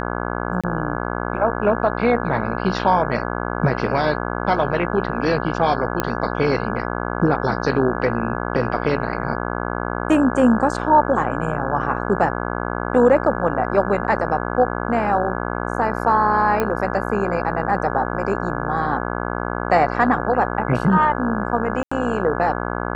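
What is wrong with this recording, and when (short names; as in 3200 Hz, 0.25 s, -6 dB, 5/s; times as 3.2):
buzz 60 Hz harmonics 28 -25 dBFS
0.61–0.64 gap 26 ms
6 pop -5 dBFS
16.6 pop -8 dBFS
21.83–21.91 gap 85 ms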